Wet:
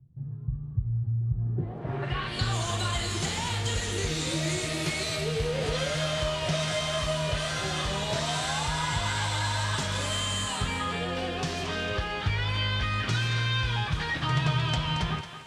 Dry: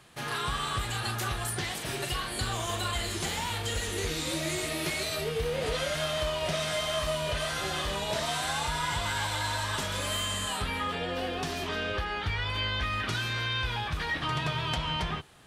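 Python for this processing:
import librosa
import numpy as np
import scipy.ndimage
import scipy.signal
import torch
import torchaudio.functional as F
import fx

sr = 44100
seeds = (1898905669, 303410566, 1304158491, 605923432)

y = fx.peak_eq(x, sr, hz=130.0, db=9.0, octaves=1.0)
y = fx.echo_thinned(y, sr, ms=225, feedback_pct=40, hz=420.0, wet_db=-9.0)
y = fx.quant_dither(y, sr, seeds[0], bits=10, dither='triangular')
y = fx.filter_sweep_lowpass(y, sr, from_hz=120.0, to_hz=7500.0, start_s=1.27, end_s=2.54, q=1.2)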